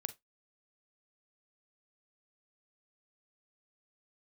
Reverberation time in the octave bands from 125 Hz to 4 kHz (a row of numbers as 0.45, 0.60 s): 0.15, 0.15, 0.15, 0.15, 0.15, 0.15 s